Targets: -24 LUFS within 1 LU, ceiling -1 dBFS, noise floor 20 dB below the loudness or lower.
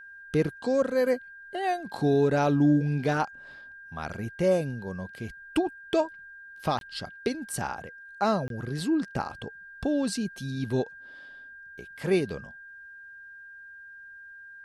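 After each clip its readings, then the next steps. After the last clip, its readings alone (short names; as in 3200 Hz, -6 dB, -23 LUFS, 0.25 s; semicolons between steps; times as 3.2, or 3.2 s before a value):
dropouts 2; longest dropout 22 ms; steady tone 1600 Hz; tone level -44 dBFS; loudness -28.5 LUFS; peak -13.5 dBFS; loudness target -24.0 LUFS
-> interpolate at 6.79/8.48, 22 ms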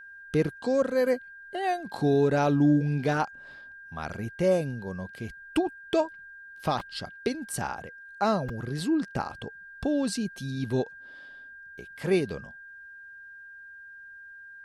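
dropouts 0; steady tone 1600 Hz; tone level -44 dBFS
-> notch 1600 Hz, Q 30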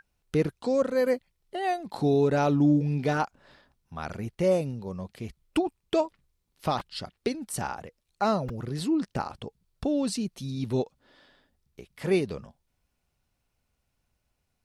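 steady tone none; loudness -28.5 LUFS; peak -13.5 dBFS; loudness target -24.0 LUFS
-> gain +4.5 dB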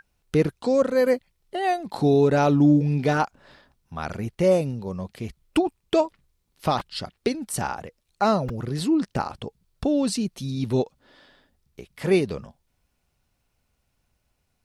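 loudness -24.0 LUFS; peak -9.0 dBFS; noise floor -73 dBFS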